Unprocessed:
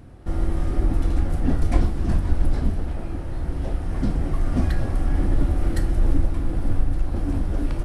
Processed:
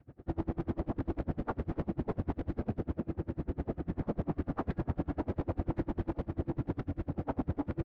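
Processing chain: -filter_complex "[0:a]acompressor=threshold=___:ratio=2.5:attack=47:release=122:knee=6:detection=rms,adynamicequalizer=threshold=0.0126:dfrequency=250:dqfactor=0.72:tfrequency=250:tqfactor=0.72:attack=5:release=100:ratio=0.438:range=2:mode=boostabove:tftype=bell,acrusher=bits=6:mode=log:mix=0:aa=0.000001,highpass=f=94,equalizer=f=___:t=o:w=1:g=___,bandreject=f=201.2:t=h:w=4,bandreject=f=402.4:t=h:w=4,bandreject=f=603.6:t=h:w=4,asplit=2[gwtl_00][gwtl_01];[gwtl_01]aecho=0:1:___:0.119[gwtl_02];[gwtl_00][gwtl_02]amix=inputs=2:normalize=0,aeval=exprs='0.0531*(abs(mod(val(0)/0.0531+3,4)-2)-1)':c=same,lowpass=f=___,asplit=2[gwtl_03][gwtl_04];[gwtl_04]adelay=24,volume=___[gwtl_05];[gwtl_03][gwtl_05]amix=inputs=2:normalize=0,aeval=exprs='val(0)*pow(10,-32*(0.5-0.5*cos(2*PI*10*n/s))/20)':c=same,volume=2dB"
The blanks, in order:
-19dB, 980, -6.5, 675, 1400, -13dB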